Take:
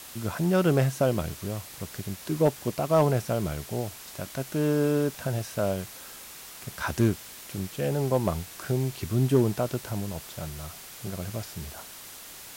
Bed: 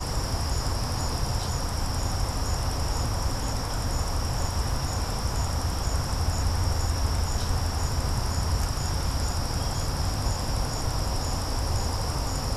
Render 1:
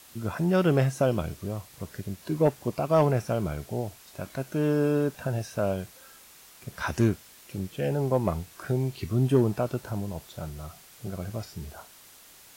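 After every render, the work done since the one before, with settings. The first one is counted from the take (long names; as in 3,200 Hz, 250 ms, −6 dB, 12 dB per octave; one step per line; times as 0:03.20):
noise reduction from a noise print 8 dB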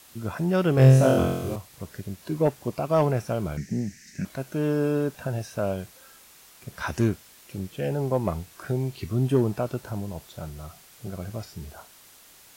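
0:00.75–0:01.56: flutter between parallel walls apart 3.9 metres, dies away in 0.94 s
0:03.57–0:04.25: drawn EQ curve 110 Hz 0 dB, 200 Hz +14 dB, 580 Hz −16 dB, 1,200 Hz −21 dB, 1,800 Hz +13 dB, 3,400 Hz −9 dB, 5,900 Hz +9 dB, 11,000 Hz −9 dB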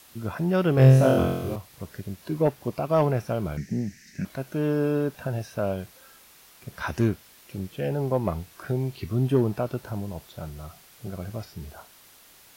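dynamic equaliser 7,600 Hz, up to −7 dB, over −58 dBFS, Q 1.5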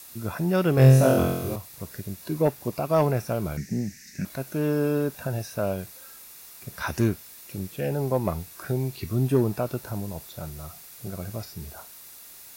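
high-shelf EQ 5,500 Hz +10.5 dB
notch filter 3,100 Hz, Q 10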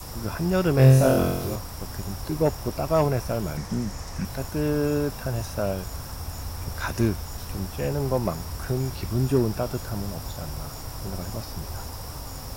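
mix in bed −8.5 dB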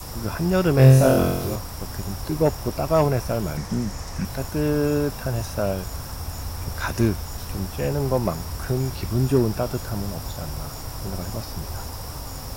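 level +2.5 dB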